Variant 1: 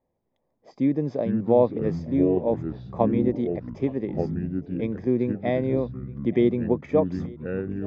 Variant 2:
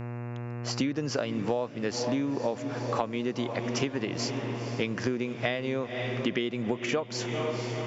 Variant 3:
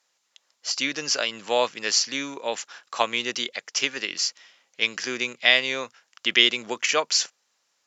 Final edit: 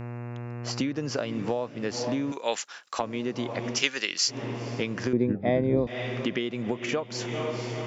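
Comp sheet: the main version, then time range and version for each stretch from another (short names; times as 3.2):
2
2.32–2.99 from 3
3.77–4.34 from 3, crossfade 0.16 s
5.13–5.87 from 1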